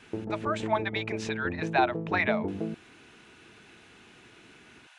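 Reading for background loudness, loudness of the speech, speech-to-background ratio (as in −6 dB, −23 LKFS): −34.5 LKFS, −30.5 LKFS, 4.0 dB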